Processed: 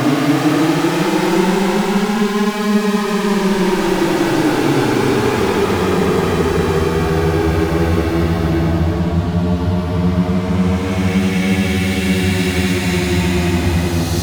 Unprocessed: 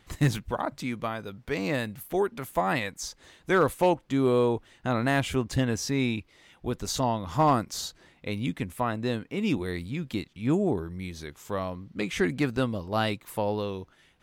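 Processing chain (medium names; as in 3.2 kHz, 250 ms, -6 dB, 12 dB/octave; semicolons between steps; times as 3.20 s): fuzz box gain 48 dB, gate -56 dBFS; Paulstretch 22×, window 0.10 s, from 10.49 s; trim -1 dB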